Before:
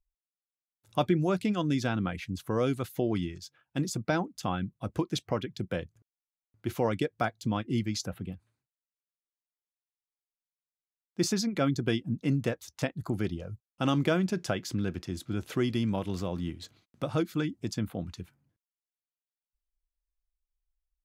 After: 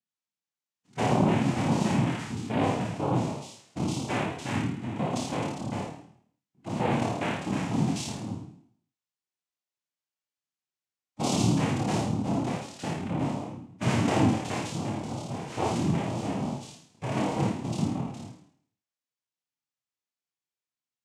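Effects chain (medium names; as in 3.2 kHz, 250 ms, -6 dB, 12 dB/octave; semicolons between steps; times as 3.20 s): flutter echo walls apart 4.6 m, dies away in 0.61 s; noise-vocoded speech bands 4; harmonic-percussive split percussive -15 dB; trim +4 dB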